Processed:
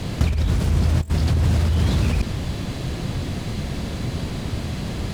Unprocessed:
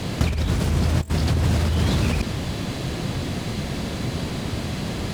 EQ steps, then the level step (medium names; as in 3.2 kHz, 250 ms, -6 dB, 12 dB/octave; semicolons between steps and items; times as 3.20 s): bass shelf 90 Hz +9.5 dB; -2.5 dB